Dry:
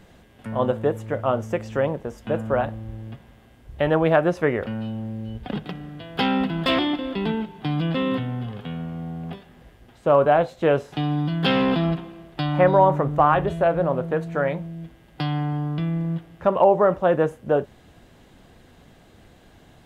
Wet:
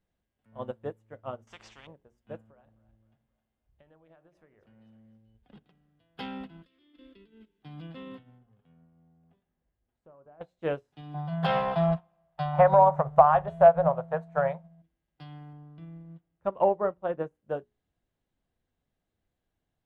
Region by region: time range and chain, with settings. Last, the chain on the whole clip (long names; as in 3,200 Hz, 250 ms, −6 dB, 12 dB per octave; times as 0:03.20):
0:01.47–0:01.87: high-frequency loss of the air 100 metres + every bin compressed towards the loudest bin 10 to 1
0:02.46–0:05.18: downward compressor 10 to 1, threshold −26 dBFS + echo with a time of its own for lows and highs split 570 Hz, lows 95 ms, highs 261 ms, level −12 dB
0:06.62–0:07.63: compressor whose output falls as the input rises −26 dBFS, ratio −0.5 + phaser with its sweep stopped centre 330 Hz, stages 4
0:08.38–0:10.41: high-shelf EQ 2,300 Hz −8 dB + downward compressor, threshold −25 dBFS + treble cut that deepens with the level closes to 1,800 Hz, closed at −26 dBFS
0:11.14–0:14.82: drawn EQ curve 120 Hz 0 dB, 170 Hz +6 dB, 270 Hz −20 dB, 660 Hz +14 dB, 2,800 Hz −2 dB + downward compressor 3 to 1, threshold −11 dBFS
0:15.53–0:17.35: high-shelf EQ 2,700 Hz −7 dB + notch filter 1,700 Hz, Q 30
whole clip: low-shelf EQ 71 Hz +7.5 dB; mains-hum notches 60/120/180/240/300/360/420 Hz; expander for the loud parts 2.5 to 1, over −31 dBFS; level −1 dB